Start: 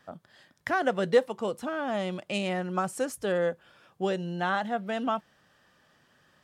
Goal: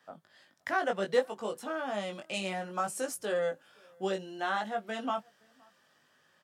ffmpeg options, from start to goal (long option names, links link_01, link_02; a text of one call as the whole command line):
ffmpeg -i in.wav -filter_complex "[0:a]highpass=frequency=330:poles=1,acrossover=split=590|4600[link_01][link_02][link_03];[link_03]dynaudnorm=framelen=530:gausssize=5:maxgain=5dB[link_04];[link_01][link_02][link_04]amix=inputs=3:normalize=0,flanger=delay=18.5:depth=2.5:speed=0.62,asplit=2[link_05][link_06];[link_06]adelay=519,volume=-29dB,highshelf=frequency=4000:gain=-11.7[link_07];[link_05][link_07]amix=inputs=2:normalize=0" out.wav